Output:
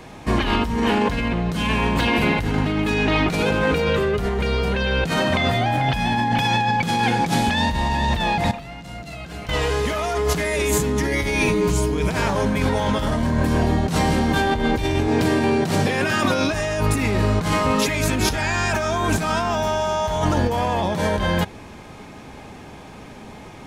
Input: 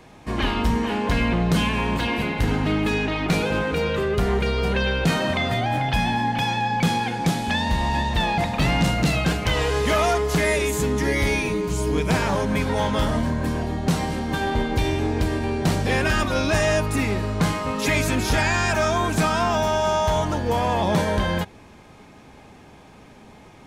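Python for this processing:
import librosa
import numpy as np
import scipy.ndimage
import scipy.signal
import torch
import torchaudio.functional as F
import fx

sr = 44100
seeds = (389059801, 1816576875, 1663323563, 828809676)

y = fx.highpass(x, sr, hz=110.0, slope=24, at=(15.08, 16.5))
y = fx.over_compress(y, sr, threshold_db=-25.0, ratio=-1.0)
y = fx.comb_fb(y, sr, f0_hz=690.0, decay_s=0.43, harmonics='all', damping=0.0, mix_pct=80, at=(8.51, 9.49))
y = y * librosa.db_to_amplitude(4.5)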